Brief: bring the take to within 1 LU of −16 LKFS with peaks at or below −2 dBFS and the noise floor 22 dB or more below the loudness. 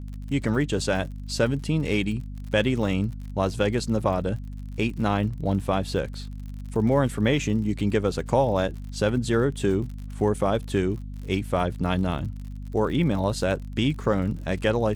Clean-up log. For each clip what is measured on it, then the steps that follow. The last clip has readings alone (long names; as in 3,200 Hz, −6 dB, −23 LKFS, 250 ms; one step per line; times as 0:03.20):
crackle rate 56 per second; mains hum 50 Hz; hum harmonics up to 250 Hz; level of the hum −33 dBFS; integrated loudness −25.5 LKFS; sample peak −9.0 dBFS; target loudness −16.0 LKFS
→ click removal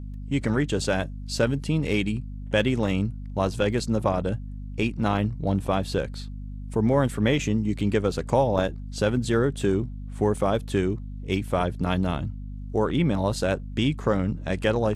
crackle rate 0.33 per second; mains hum 50 Hz; hum harmonics up to 250 Hz; level of the hum −33 dBFS
→ mains-hum notches 50/100/150/200/250 Hz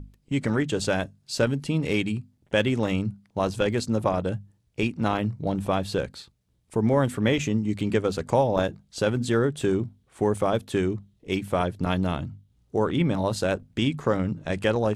mains hum none found; integrated loudness −26.0 LKFS; sample peak −7.0 dBFS; target loudness −16.0 LKFS
→ level +10 dB
brickwall limiter −2 dBFS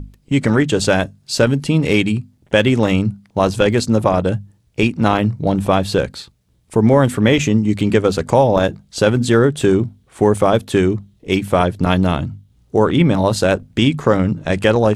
integrated loudness −16.5 LKFS; sample peak −2.0 dBFS; background noise floor −57 dBFS